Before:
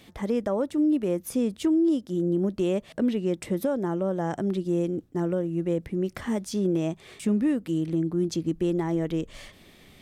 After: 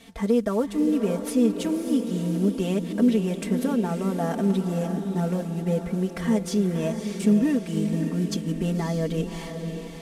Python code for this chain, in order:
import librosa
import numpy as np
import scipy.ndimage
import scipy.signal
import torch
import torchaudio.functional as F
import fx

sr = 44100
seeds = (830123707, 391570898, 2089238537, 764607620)

y = fx.cvsd(x, sr, bps=64000)
y = y + 0.91 * np.pad(y, (int(4.4 * sr / 1000.0), 0))[:len(y)]
y = fx.echo_diffused(y, sr, ms=584, feedback_pct=52, wet_db=-7.5)